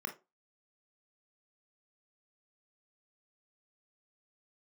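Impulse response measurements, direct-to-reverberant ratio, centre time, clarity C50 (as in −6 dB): 4.0 dB, 12 ms, 13.0 dB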